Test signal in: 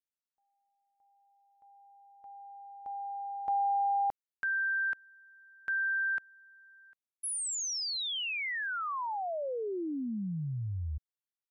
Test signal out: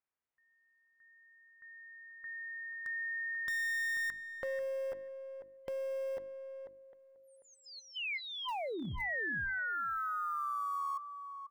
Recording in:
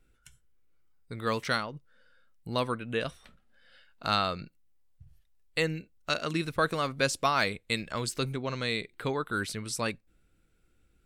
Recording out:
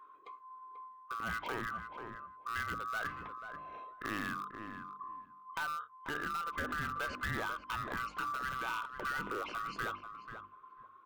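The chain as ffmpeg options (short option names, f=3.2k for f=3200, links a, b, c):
-filter_complex "[0:a]afftfilt=real='real(if(lt(b,960),b+48*(1-2*mod(floor(b/48),2)),b),0)':imag='imag(if(lt(b,960),b+48*(1-2*mod(floor(b/48),2)),b),0)':win_size=2048:overlap=0.75,lowpass=f=2.1k:w=0.5412,lowpass=f=2.1k:w=1.3066,equalizer=f=980:t=o:w=0.21:g=4,bandreject=f=50:t=h:w=6,bandreject=f=100:t=h:w=6,bandreject=f=150:t=h:w=6,bandreject=f=200:t=h:w=6,bandreject=f=250:t=h:w=6,bandreject=f=300:t=h:w=6,bandreject=f=350:t=h:w=6,asplit=2[a][b];[b]alimiter=level_in=1.5dB:limit=-24dB:level=0:latency=1:release=25,volume=-1.5dB,volume=-0.5dB[c];[a][c]amix=inputs=2:normalize=0,acompressor=threshold=-41dB:ratio=2.5:attack=4.3:release=55:knee=6:detection=peak,aeval=exprs='clip(val(0),-1,0.0188)':c=same,aemphasis=mode=production:type=75fm,asplit=2[d][e];[e]adelay=489,lowpass=f=1.5k:p=1,volume=-7dB,asplit=2[f][g];[g]adelay=489,lowpass=f=1.5k:p=1,volume=0.15,asplit=2[h][i];[i]adelay=489,lowpass=f=1.5k:p=1,volume=0.15[j];[d][f][h][j]amix=inputs=4:normalize=0"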